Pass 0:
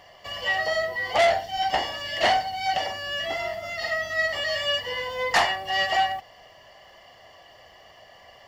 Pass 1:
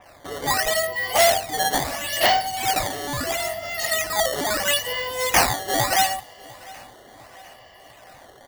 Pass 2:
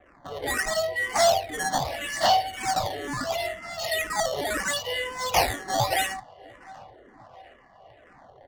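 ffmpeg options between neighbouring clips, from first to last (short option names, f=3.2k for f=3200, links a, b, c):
-af "acrusher=samples=10:mix=1:aa=0.000001:lfo=1:lforange=16:lforate=0.75,aecho=1:1:701|1402|2103|2804:0.0794|0.0437|0.024|0.0132,adynamicequalizer=threshold=0.01:dfrequency=3600:dqfactor=0.7:tfrequency=3600:tqfactor=0.7:attack=5:release=100:ratio=0.375:range=3:mode=boostabove:tftype=highshelf,volume=2dB"
-filter_complex "[0:a]acrossover=split=410[a][b];[b]adynamicsmooth=sensitivity=7.5:basefreq=1.3k[c];[a][c]amix=inputs=2:normalize=0,asplit=2[d][e];[e]afreqshift=-2[f];[d][f]amix=inputs=2:normalize=1"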